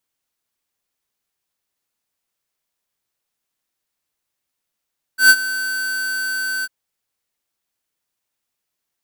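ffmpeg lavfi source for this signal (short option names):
-f lavfi -i "aevalsrc='0.447*(2*lt(mod(1530*t,1),0.5)-1)':d=1.498:s=44100,afade=t=in:d=0.118,afade=t=out:st=0.118:d=0.053:silence=0.158,afade=t=out:st=1.46:d=0.038"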